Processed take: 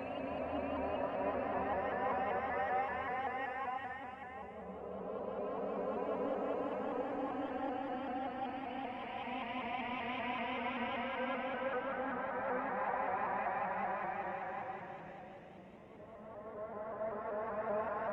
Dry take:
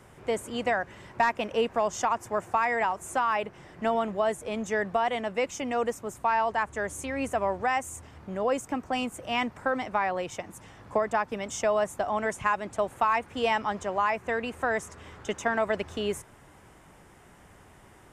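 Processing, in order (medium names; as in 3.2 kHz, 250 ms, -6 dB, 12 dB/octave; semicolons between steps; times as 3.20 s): distance through air 370 m; level held to a coarse grid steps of 15 dB; Paulstretch 4.6×, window 1.00 s, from 7.12 s; vibrato with a chosen wave saw up 5.2 Hz, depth 100 cents; trim -3.5 dB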